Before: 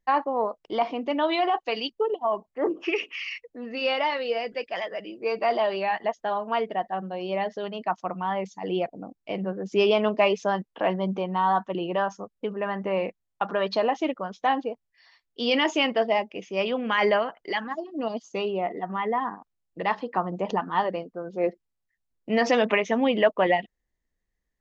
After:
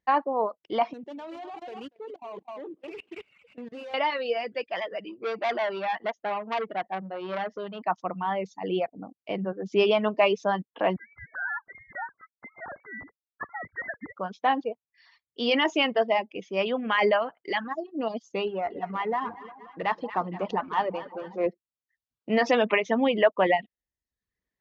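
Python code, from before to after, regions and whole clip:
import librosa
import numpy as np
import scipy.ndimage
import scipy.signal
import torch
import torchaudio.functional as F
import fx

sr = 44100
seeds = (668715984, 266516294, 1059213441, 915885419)

y = fx.chain(x, sr, fx.median_filter(points=25),
    fx.echo_single(ms=240, db=-10.5),
    fx.level_steps(step_db=19), at=(0.93, 3.94))
y = fx.chain(y, sr, fx.high_shelf(hz=4800.0, db=-8.5),
    fx.transformer_sat(knee_hz=1900.0), at=(5.09, 7.82))
y = fx.chain(y, sr, fx.sine_speech(),
    fx.highpass(hz=1400.0, slope=12),
    fx.freq_invert(carrier_hz=2500), at=(10.96, 14.16))
y = fx.chain(y, sr, fx.halfwave_gain(db=-3.0),
    fx.echo_split(split_hz=990.0, low_ms=178, high_ms=232, feedback_pct=52, wet_db=-11.5), at=(18.47, 21.46))
y = scipy.signal.sosfilt(scipy.signal.butter(2, 76.0, 'highpass', fs=sr, output='sos'), y)
y = fx.dereverb_blind(y, sr, rt60_s=0.63)
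y = scipy.signal.sosfilt(scipy.signal.butter(2, 5100.0, 'lowpass', fs=sr, output='sos'), y)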